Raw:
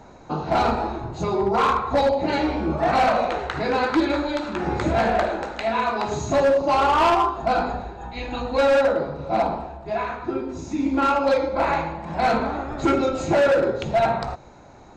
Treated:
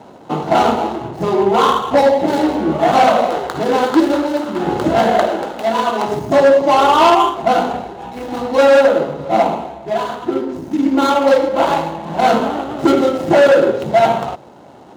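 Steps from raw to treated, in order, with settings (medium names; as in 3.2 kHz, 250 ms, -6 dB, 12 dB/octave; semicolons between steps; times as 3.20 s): median filter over 25 samples; high-pass 170 Hz 12 dB/octave; band-stop 2.4 kHz, Q 13; trim +8.5 dB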